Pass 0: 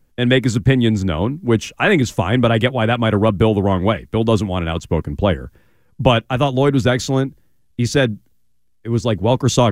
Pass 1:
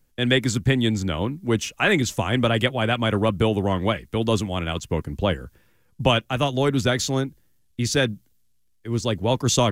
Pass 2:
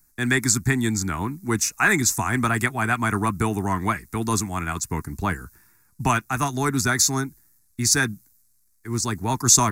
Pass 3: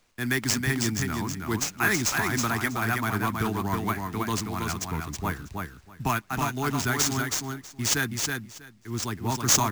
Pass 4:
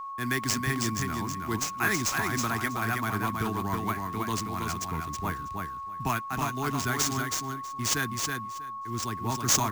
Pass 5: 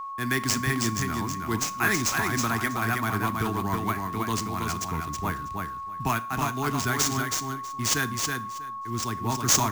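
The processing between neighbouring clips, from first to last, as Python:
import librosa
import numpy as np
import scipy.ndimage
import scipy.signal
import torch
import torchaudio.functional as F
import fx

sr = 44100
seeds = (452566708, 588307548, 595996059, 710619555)

y1 = fx.high_shelf(x, sr, hz=2300.0, db=8.0)
y1 = F.gain(torch.from_numpy(y1), -6.5).numpy()
y2 = fx.bass_treble(y1, sr, bass_db=-7, treble_db=9)
y2 = fx.fixed_phaser(y2, sr, hz=1300.0, stages=4)
y2 = F.gain(torch.from_numpy(y2), 5.0).numpy()
y3 = fx.sample_hold(y2, sr, seeds[0], rate_hz=13000.0, jitter_pct=0)
y3 = fx.echo_feedback(y3, sr, ms=322, feedback_pct=15, wet_db=-4)
y3 = F.gain(torch.from_numpy(y3), -5.5).numpy()
y4 = y3 + 10.0 ** (-32.0 / 20.0) * np.sin(2.0 * np.pi * 1100.0 * np.arange(len(y3)) / sr)
y4 = F.gain(torch.from_numpy(y4), -3.0).numpy()
y5 = fx.rev_schroeder(y4, sr, rt60_s=0.4, comb_ms=27, drr_db=16.0)
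y5 = F.gain(torch.from_numpy(y5), 2.5).numpy()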